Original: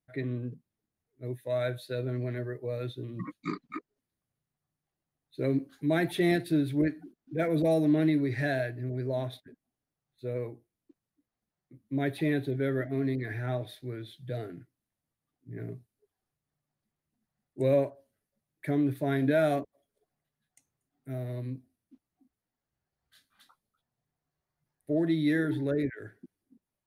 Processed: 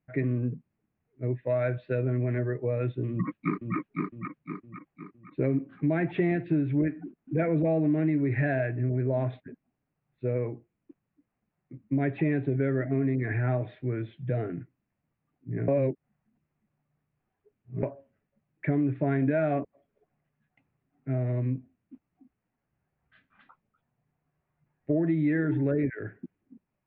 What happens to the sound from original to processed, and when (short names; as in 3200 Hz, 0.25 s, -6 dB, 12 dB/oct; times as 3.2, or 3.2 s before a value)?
3.1–3.76 echo throw 0.51 s, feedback 45%, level -4.5 dB
15.68–17.83 reverse
whole clip: Chebyshev low-pass 2600 Hz, order 4; bell 170 Hz +5 dB 1.4 oct; compressor 4:1, threshold -30 dBFS; gain +6.5 dB